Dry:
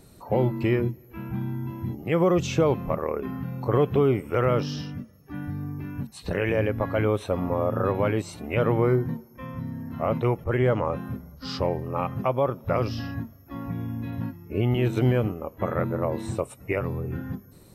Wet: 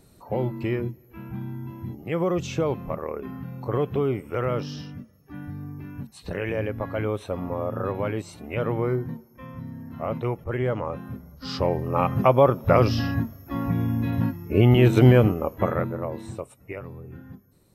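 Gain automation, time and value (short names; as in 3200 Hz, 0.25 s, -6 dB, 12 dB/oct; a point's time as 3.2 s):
11.05 s -3.5 dB
12.21 s +7 dB
15.52 s +7 dB
15.94 s -3 dB
16.9 s -10 dB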